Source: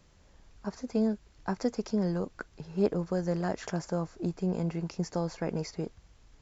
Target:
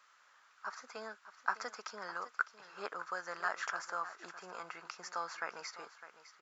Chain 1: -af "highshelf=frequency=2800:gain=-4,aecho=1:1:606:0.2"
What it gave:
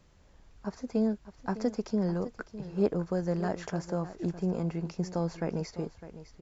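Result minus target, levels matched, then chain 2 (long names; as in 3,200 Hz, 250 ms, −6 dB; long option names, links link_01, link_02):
1,000 Hz band −11.0 dB
-af "highpass=frequency=1300:width_type=q:width=4.1,highshelf=frequency=2800:gain=-4,aecho=1:1:606:0.2"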